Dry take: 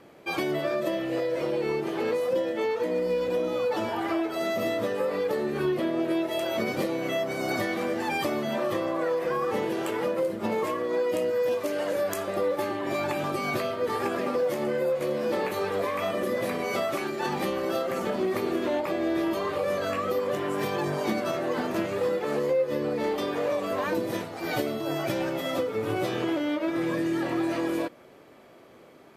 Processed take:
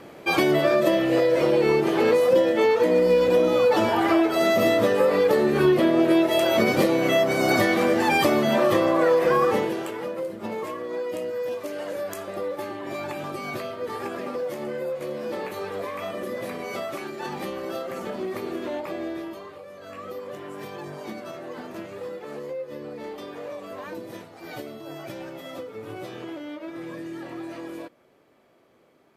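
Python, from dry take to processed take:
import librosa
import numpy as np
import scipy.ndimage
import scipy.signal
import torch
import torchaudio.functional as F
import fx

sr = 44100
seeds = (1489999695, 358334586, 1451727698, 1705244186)

y = fx.gain(x, sr, db=fx.line((9.44, 8.0), (9.94, -3.5), (19.01, -3.5), (19.72, -16.5), (20.02, -8.5)))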